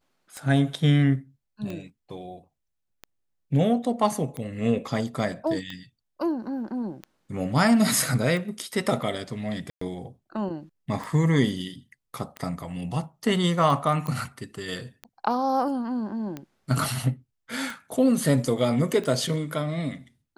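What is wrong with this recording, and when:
scratch tick 45 rpm −21 dBFS
0:09.70–0:09.81: drop-out 114 ms
0:14.07: click −18 dBFS

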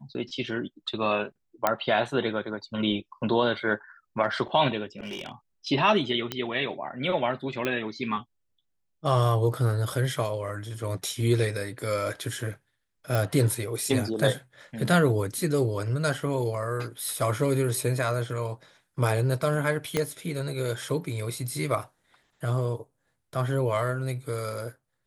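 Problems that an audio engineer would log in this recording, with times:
0:01.67: click −8 dBFS
0:04.99–0:05.32: clipping −31 dBFS
0:06.32: click −13 dBFS
0:07.65: click −14 dBFS
0:13.15: click
0:19.97: click −10 dBFS

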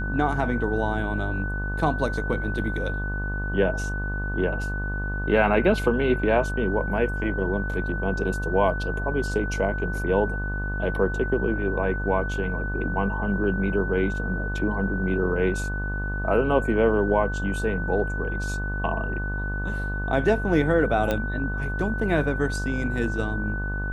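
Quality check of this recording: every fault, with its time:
mains buzz 50 Hz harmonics 25 −29 dBFS
whistle 1,500 Hz −31 dBFS
0:21.11: click −12 dBFS

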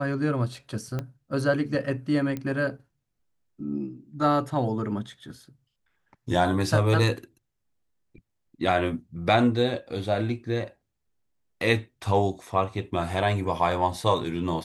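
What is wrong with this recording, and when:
0:00.99: click −18 dBFS
0:02.37: click −19 dBFS

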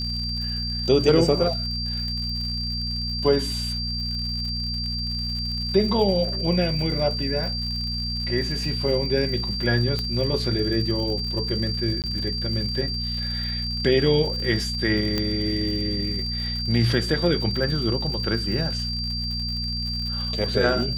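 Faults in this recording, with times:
surface crackle 110 per second −32 dBFS
mains hum 60 Hz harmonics 4 −30 dBFS
whistle 4,700 Hz −28 dBFS
0:09.99: click −14 dBFS
0:12.02–0:12.04: drop-out 18 ms
0:15.18: click −10 dBFS

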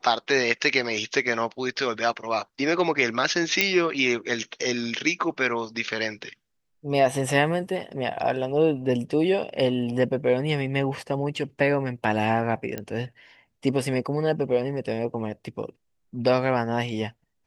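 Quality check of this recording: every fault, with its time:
0:03.61: click −3 dBFS
0:12.78: click −16 dBFS

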